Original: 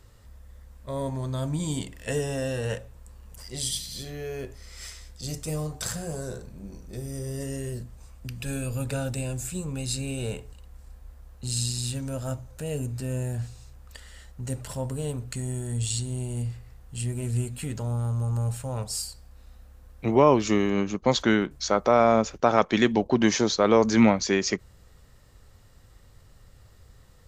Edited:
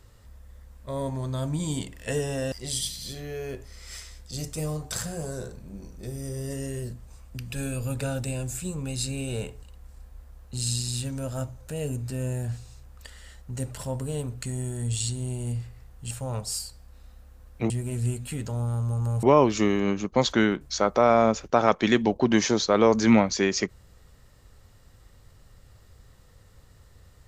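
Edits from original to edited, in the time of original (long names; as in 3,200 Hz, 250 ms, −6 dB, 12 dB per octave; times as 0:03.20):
0:02.52–0:03.42: remove
0:17.01–0:18.54: move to 0:20.13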